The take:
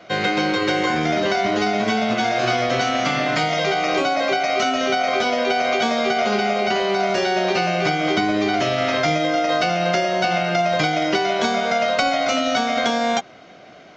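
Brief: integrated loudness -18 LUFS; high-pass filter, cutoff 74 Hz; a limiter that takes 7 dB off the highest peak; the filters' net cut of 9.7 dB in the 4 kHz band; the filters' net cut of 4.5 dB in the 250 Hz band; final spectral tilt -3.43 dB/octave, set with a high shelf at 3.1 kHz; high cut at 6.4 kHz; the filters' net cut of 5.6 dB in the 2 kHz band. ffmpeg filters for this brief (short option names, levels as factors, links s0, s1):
-af "highpass=74,lowpass=6400,equalizer=f=250:t=o:g=-6,equalizer=f=2000:t=o:g=-4,highshelf=f=3100:g=-4,equalizer=f=4000:t=o:g=-8,volume=2.24,alimiter=limit=0.335:level=0:latency=1"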